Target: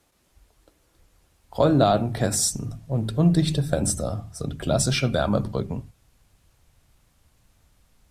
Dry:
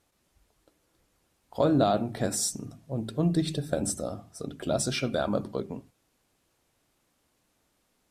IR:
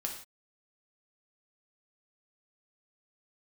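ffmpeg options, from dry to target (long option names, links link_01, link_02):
-filter_complex "[0:a]asubboost=boost=7.5:cutoff=110,acrossover=split=130|1700|2200[link_01][link_02][link_03][link_04];[link_01]asoftclip=type=hard:threshold=-38.5dB[link_05];[link_05][link_02][link_03][link_04]amix=inputs=4:normalize=0,volume=6dB"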